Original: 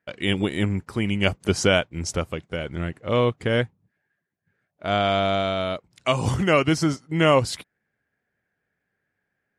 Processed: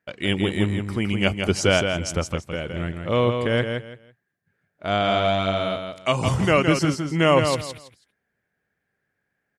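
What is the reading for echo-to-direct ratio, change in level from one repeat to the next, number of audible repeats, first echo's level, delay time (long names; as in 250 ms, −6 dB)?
−6.0 dB, −13.0 dB, 3, −6.0 dB, 165 ms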